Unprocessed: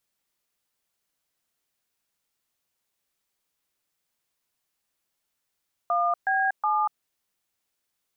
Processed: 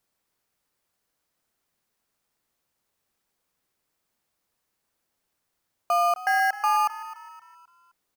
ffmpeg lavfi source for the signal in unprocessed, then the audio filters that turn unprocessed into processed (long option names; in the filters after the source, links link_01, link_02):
-f lavfi -i "aevalsrc='0.0668*clip(min(mod(t,0.368),0.239-mod(t,0.368))/0.002,0,1)*(eq(floor(t/0.368),0)*(sin(2*PI*697*mod(t,0.368))+sin(2*PI*1209*mod(t,0.368)))+eq(floor(t/0.368),1)*(sin(2*PI*770*mod(t,0.368))+sin(2*PI*1633*mod(t,0.368)))+eq(floor(t/0.368),2)*(sin(2*PI*852*mod(t,0.368))+sin(2*PI*1209*mod(t,0.368))))':duration=1.104:sample_rate=44100"
-filter_complex "[0:a]asplit=2[link_01][link_02];[link_02]acrusher=samples=12:mix=1:aa=0.000001,volume=-7.5dB[link_03];[link_01][link_03]amix=inputs=2:normalize=0,asplit=5[link_04][link_05][link_06][link_07][link_08];[link_05]adelay=260,afreqshift=42,volume=-16dB[link_09];[link_06]adelay=520,afreqshift=84,volume=-23.5dB[link_10];[link_07]adelay=780,afreqshift=126,volume=-31.1dB[link_11];[link_08]adelay=1040,afreqshift=168,volume=-38.6dB[link_12];[link_04][link_09][link_10][link_11][link_12]amix=inputs=5:normalize=0"